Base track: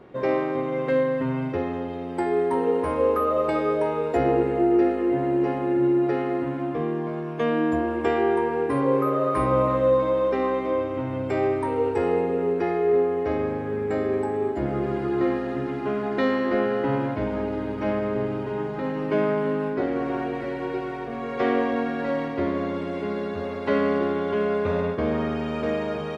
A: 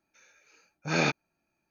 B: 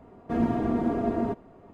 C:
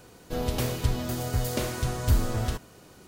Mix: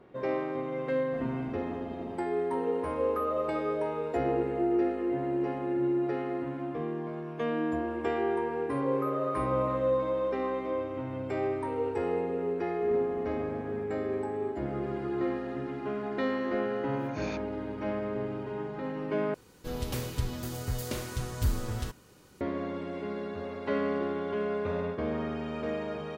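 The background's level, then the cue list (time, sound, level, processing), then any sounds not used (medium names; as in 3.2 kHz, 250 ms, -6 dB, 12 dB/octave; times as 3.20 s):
base track -7.5 dB
0.83 s: add B -15.5 dB
12.51 s: add B -17.5 dB
16.26 s: add A -15 dB + swell ahead of each attack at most 120 dB/s
19.34 s: replace with C -5.5 dB + band-stop 680 Hz, Q 5.3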